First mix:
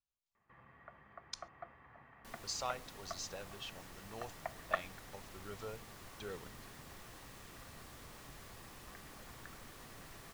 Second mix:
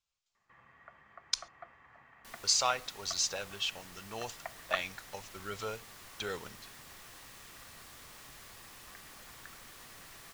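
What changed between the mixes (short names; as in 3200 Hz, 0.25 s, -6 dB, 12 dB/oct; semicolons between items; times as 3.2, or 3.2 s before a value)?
speech +9.0 dB; master: add tilt shelf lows -5 dB, about 910 Hz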